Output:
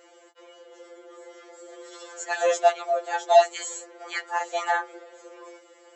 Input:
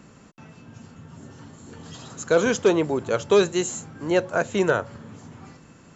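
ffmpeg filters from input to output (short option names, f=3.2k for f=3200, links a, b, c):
-af "afreqshift=270,afftfilt=real='re*2.83*eq(mod(b,8),0)':imag='im*2.83*eq(mod(b,8),0)':win_size=2048:overlap=0.75"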